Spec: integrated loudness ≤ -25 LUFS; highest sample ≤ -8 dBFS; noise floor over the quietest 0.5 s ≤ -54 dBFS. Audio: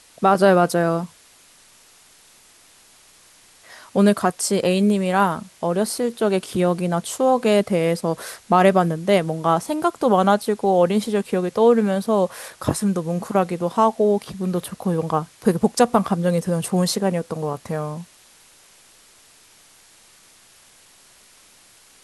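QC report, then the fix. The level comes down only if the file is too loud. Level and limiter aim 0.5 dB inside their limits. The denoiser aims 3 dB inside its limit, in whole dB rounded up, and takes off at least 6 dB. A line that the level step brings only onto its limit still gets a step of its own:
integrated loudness -20.0 LUFS: fail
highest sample -3.0 dBFS: fail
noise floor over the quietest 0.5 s -52 dBFS: fail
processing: trim -5.5 dB

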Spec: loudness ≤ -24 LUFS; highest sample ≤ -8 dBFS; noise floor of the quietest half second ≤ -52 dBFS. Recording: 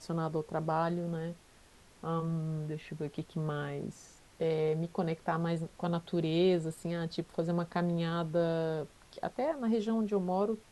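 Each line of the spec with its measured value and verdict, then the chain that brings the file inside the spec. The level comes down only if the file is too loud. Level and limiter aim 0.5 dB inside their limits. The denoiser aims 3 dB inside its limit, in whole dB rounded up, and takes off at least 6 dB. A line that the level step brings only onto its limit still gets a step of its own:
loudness -34.0 LUFS: pass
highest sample -18.0 dBFS: pass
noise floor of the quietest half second -60 dBFS: pass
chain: none needed

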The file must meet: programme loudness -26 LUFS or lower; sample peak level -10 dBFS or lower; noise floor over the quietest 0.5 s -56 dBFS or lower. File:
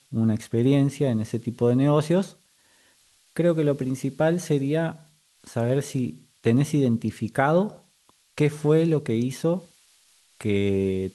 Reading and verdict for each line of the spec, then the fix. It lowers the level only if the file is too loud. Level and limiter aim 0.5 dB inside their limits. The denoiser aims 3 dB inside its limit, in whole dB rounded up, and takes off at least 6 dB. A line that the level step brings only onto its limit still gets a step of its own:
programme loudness -24.0 LUFS: fail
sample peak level -6.5 dBFS: fail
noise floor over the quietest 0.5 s -62 dBFS: pass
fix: trim -2.5 dB; peak limiter -10.5 dBFS

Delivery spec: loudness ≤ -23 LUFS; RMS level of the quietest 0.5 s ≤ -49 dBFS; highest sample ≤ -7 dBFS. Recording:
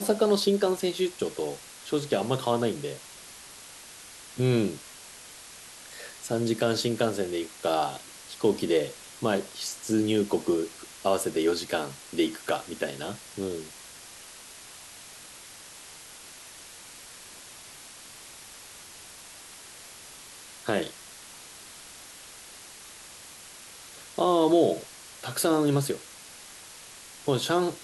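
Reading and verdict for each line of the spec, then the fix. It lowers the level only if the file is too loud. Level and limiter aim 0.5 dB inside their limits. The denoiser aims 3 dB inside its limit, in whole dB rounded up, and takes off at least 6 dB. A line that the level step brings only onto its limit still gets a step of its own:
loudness -28.0 LUFS: pass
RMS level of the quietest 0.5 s -47 dBFS: fail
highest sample -10.5 dBFS: pass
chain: noise reduction 6 dB, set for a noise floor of -47 dBFS

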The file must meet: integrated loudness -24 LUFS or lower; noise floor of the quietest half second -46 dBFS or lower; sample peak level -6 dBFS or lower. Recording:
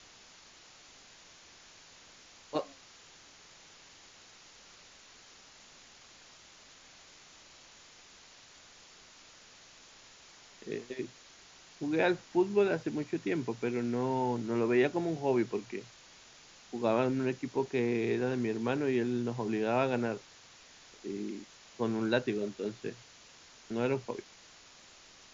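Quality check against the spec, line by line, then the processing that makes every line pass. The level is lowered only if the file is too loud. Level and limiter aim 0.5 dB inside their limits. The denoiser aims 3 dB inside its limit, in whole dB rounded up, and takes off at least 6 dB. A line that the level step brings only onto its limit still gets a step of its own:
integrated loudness -33.0 LUFS: pass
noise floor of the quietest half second -56 dBFS: pass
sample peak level -13.0 dBFS: pass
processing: none needed

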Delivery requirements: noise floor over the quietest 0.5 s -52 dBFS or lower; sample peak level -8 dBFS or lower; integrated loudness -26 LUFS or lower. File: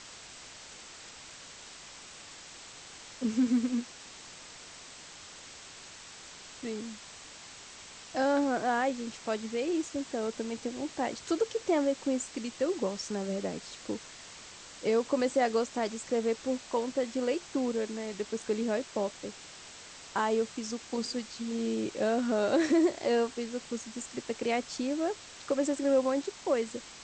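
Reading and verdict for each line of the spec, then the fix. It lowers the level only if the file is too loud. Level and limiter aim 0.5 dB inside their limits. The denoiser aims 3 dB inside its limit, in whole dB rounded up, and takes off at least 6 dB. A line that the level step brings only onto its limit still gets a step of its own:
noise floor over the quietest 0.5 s -49 dBFS: fail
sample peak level -15.5 dBFS: pass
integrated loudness -31.5 LUFS: pass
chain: noise reduction 6 dB, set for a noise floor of -49 dBFS

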